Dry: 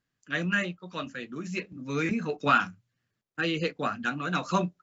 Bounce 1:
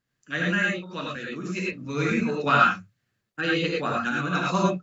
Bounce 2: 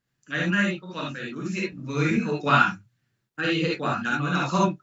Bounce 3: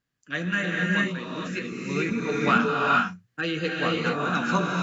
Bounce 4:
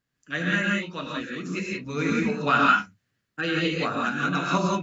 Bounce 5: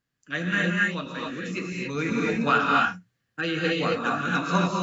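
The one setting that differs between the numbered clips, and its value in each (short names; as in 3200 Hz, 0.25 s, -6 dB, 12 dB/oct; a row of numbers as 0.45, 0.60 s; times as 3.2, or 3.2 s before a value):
non-linear reverb, gate: 130, 90, 480, 200, 300 ms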